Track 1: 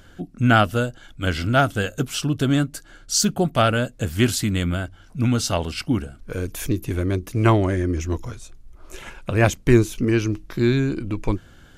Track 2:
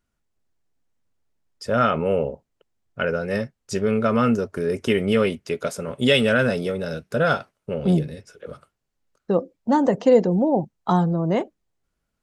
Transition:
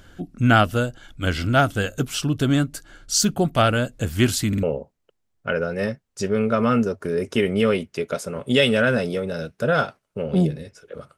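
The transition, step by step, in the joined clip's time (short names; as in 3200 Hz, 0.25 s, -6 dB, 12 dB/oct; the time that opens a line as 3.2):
track 1
4.48 stutter in place 0.05 s, 3 plays
4.63 switch to track 2 from 2.15 s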